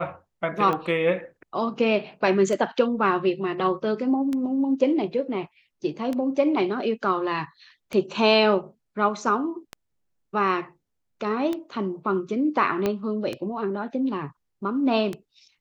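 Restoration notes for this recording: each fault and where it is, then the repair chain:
scratch tick 33 1/3 rpm −16 dBFS
0:12.86: click −11 dBFS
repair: click removal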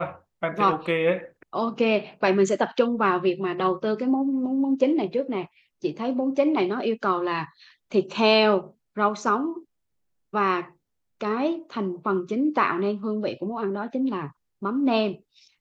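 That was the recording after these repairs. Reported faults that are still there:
0:12.86: click

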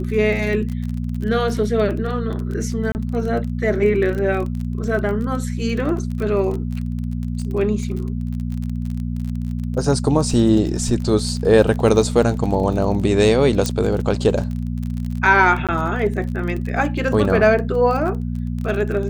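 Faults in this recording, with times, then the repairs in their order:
surface crackle 32 per second −26 dBFS
mains hum 60 Hz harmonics 4 −24 dBFS
0:02.92–0:02.95: drop-out 29 ms
0:13.66: click −7 dBFS
0:15.67–0:15.69: drop-out 17 ms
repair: click removal
hum removal 60 Hz, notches 4
repair the gap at 0:02.92, 29 ms
repair the gap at 0:15.67, 17 ms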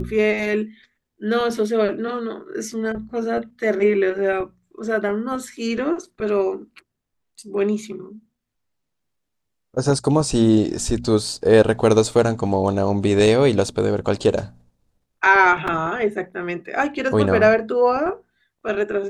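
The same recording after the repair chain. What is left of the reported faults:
none of them is left

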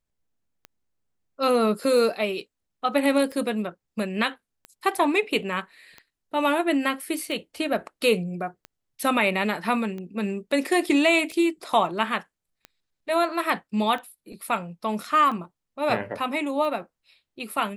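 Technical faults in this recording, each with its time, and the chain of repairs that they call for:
scratch tick 45 rpm −24 dBFS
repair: click removal

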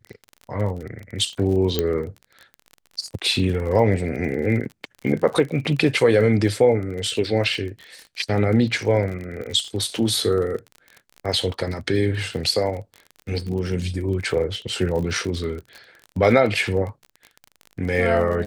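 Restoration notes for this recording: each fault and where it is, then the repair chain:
surface crackle 38 per second −30 dBFS
0:01.79: click −7 dBFS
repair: click removal

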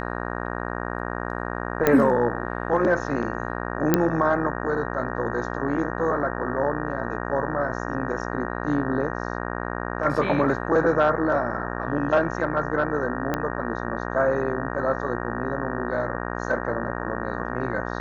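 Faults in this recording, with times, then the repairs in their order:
mains buzz 60 Hz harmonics 31 −30 dBFS
0:01.87: click −6 dBFS
0:03.94: click −4 dBFS
0:13.34: click −11 dBFS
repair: click removal
hum removal 60 Hz, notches 31

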